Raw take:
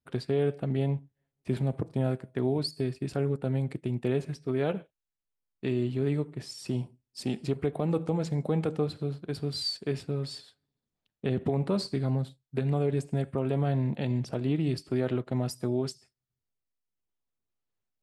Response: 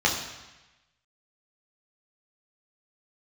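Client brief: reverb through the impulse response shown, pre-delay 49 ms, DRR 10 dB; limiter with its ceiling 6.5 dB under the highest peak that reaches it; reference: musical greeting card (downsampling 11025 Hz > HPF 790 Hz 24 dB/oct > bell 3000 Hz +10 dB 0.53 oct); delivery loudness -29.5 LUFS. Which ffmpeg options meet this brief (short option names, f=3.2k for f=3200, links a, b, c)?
-filter_complex "[0:a]alimiter=limit=-21.5dB:level=0:latency=1,asplit=2[a][b];[1:a]atrim=start_sample=2205,adelay=49[c];[b][c]afir=irnorm=-1:irlink=0,volume=-25dB[d];[a][d]amix=inputs=2:normalize=0,aresample=11025,aresample=44100,highpass=f=790:w=0.5412,highpass=f=790:w=1.3066,equalizer=f=3k:t=o:w=0.53:g=10,volume=12dB"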